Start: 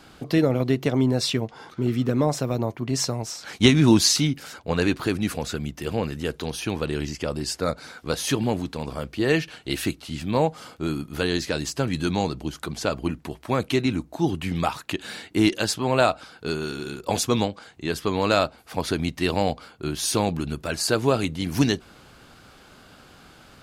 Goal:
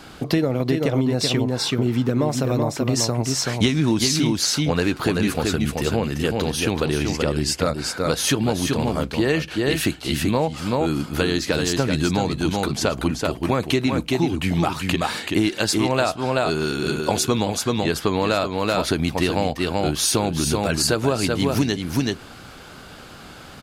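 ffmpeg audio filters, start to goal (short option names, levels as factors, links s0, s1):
-af "aecho=1:1:381:0.531,acompressor=threshold=0.0631:ratio=6,volume=2.37"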